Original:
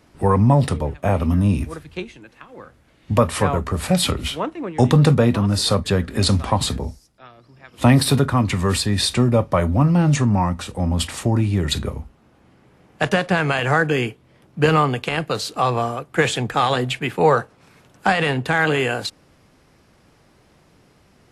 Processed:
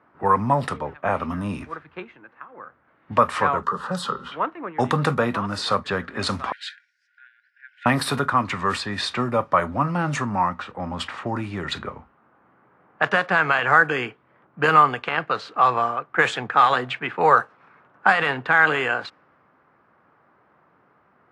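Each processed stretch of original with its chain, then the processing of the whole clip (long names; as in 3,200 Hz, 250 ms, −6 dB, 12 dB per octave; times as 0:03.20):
0:03.63–0:04.32: phaser with its sweep stopped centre 450 Hz, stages 8 + hum removal 267.4 Hz, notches 25 + multiband upward and downward compressor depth 40%
0:06.52–0:07.86: upward compression, threshold −33 dBFS + linear-phase brick-wall high-pass 1,400 Hz
whole clip: low-pass that shuts in the quiet parts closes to 1,500 Hz, open at −11.5 dBFS; Bessel high-pass filter 160 Hz, order 2; parametric band 1,300 Hz +14 dB 1.6 octaves; level −8 dB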